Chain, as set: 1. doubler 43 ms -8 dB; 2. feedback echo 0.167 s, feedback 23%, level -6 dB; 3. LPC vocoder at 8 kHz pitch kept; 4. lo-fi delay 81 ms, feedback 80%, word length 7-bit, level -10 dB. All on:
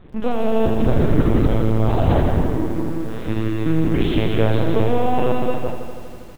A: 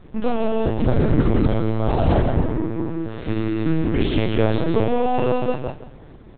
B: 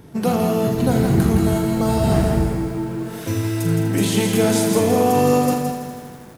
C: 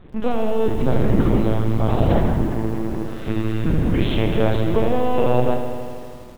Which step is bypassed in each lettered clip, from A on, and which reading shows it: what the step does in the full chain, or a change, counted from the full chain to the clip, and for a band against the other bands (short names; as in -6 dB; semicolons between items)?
4, crest factor change +1.5 dB; 3, 4 kHz band +3.0 dB; 2, crest factor change +1.5 dB